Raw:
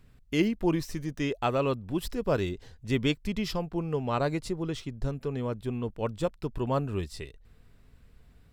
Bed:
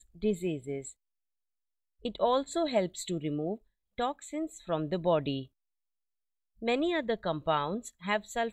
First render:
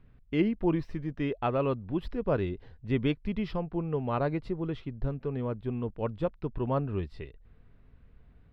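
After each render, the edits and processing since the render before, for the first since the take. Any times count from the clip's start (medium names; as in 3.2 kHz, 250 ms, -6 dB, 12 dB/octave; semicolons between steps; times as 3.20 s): distance through air 390 m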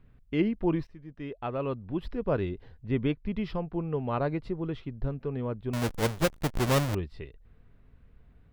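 0.87–2.11 s: fade in, from -16 dB; 2.86–3.35 s: low-pass 2.8 kHz 6 dB/octave; 5.73–6.95 s: square wave that keeps the level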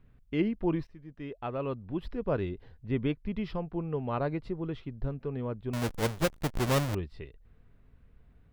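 trim -2 dB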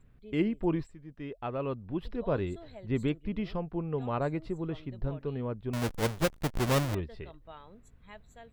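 add bed -20.5 dB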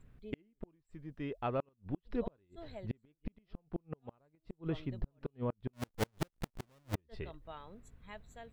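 inverted gate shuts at -24 dBFS, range -40 dB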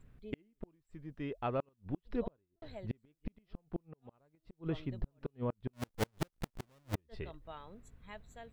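2.20–2.62 s: studio fade out; 3.82–4.59 s: compression 2.5:1, threshold -51 dBFS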